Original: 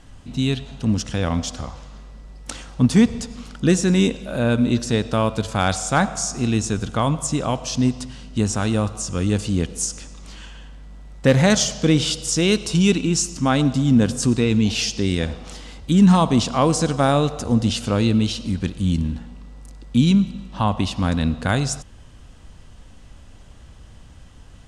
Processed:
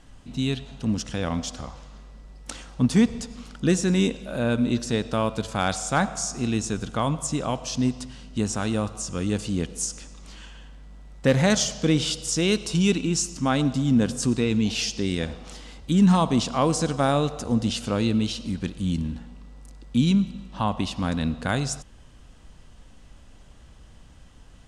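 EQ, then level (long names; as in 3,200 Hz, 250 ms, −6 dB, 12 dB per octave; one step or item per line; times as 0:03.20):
parametric band 91 Hz −5 dB 0.69 octaves
−4.0 dB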